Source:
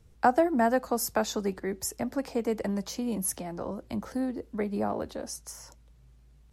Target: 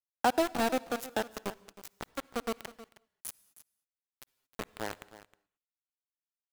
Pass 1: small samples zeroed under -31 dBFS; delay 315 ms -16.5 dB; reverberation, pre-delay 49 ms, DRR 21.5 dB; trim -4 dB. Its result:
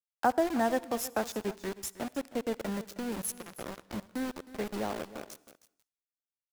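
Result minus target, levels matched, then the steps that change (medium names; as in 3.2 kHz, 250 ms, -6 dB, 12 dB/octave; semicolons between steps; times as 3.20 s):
small samples zeroed: distortion -9 dB
change: small samples zeroed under -22.5 dBFS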